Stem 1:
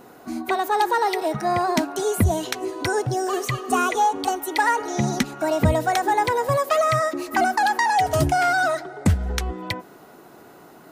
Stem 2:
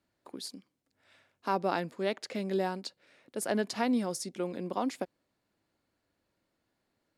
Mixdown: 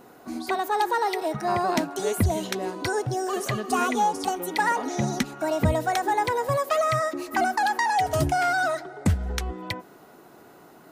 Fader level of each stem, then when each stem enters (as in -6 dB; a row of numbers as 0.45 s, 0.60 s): -3.5 dB, -2.5 dB; 0.00 s, 0.00 s